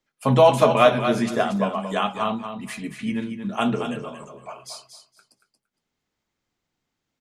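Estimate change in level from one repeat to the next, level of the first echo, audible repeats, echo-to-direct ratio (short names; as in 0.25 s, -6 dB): -15.0 dB, -8.5 dB, 2, -8.5 dB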